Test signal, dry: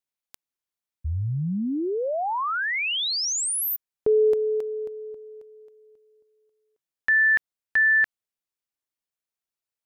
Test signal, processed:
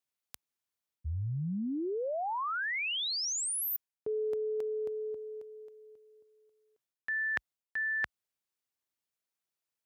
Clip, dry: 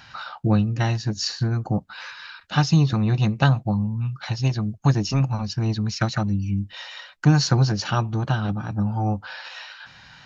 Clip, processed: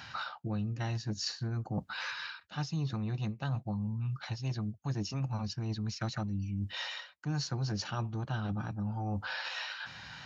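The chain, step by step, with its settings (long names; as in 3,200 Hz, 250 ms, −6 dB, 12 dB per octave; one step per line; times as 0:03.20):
high-pass filter 52 Hz 24 dB per octave
reversed playback
downward compressor 6 to 1, threshold −33 dBFS
reversed playback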